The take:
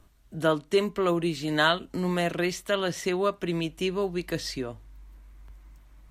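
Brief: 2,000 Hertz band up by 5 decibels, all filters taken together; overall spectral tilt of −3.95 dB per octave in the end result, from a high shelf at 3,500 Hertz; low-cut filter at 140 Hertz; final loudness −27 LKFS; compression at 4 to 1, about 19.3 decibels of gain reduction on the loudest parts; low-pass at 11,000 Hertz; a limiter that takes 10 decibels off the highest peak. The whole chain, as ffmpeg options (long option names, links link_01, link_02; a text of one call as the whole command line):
ffmpeg -i in.wav -af "highpass=140,lowpass=11000,equalizer=frequency=2000:width_type=o:gain=5.5,highshelf=frequency=3500:gain=5,acompressor=threshold=-40dB:ratio=4,volume=17dB,alimiter=limit=-17.5dB:level=0:latency=1" out.wav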